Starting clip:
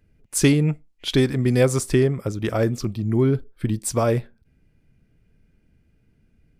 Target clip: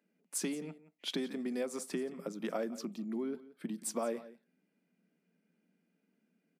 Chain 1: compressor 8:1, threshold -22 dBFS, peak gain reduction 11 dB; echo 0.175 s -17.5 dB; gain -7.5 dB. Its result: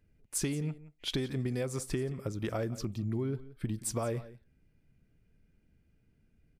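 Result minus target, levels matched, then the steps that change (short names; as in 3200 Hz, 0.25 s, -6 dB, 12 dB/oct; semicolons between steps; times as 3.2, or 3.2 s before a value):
125 Hz band +15.0 dB
add after compressor: rippled Chebyshev high-pass 170 Hz, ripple 3 dB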